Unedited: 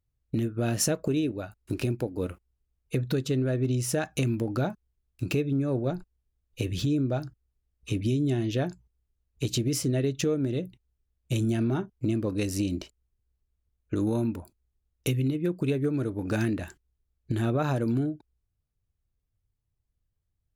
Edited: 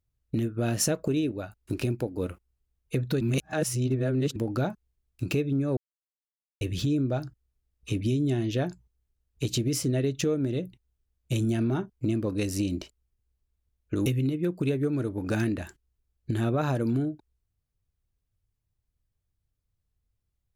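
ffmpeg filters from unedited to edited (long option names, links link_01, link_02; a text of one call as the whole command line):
ffmpeg -i in.wav -filter_complex "[0:a]asplit=6[link_01][link_02][link_03][link_04][link_05][link_06];[link_01]atrim=end=3.212[link_07];[link_02]atrim=start=3.208:end=4.362,asetpts=PTS-STARTPTS,areverse[link_08];[link_03]atrim=start=4.358:end=5.77,asetpts=PTS-STARTPTS,afade=type=out:start_time=1.408:duration=0.004:curve=hsin[link_09];[link_04]atrim=start=5.77:end=6.61,asetpts=PTS-STARTPTS,volume=0[link_10];[link_05]atrim=start=6.61:end=14.062,asetpts=PTS-STARTPTS,afade=type=in:duration=0.004:curve=hsin[link_11];[link_06]atrim=start=15.068[link_12];[link_07][link_08]acrossfade=duration=0.004:curve1=hsin:curve2=hsin[link_13];[link_09][link_10][link_11]concat=n=3:v=0:a=1[link_14];[link_13][link_14]acrossfade=duration=0.004:curve1=hsin:curve2=hsin[link_15];[link_15][link_12]acrossfade=duration=0.004:curve1=hsin:curve2=hsin" out.wav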